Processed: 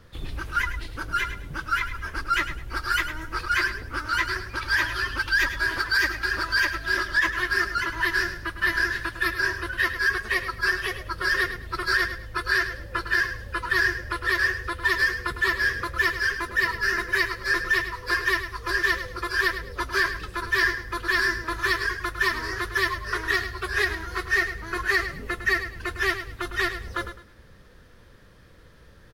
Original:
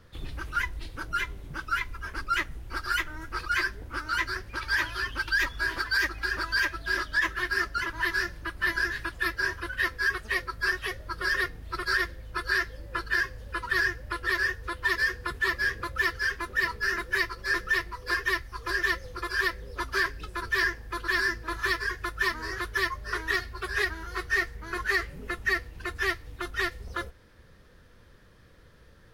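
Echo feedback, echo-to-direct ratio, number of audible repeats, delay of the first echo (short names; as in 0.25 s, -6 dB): 27%, -10.0 dB, 3, 0.105 s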